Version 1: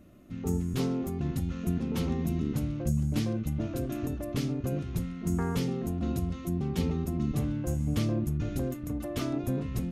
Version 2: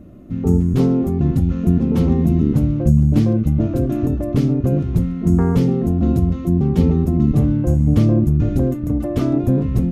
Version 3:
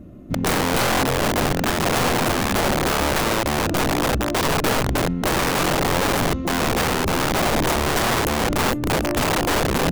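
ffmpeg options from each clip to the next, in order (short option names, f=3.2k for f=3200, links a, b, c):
-af "tiltshelf=f=1.1k:g=7.5,volume=7.5dB"
-af "aeval=exprs='(mod(5.62*val(0)+1,2)-1)/5.62':c=same,aeval=exprs='0.188*(cos(1*acos(clip(val(0)/0.188,-1,1)))-cos(1*PI/2))+0.0133*(cos(4*acos(clip(val(0)/0.188,-1,1)))-cos(4*PI/2))':c=same"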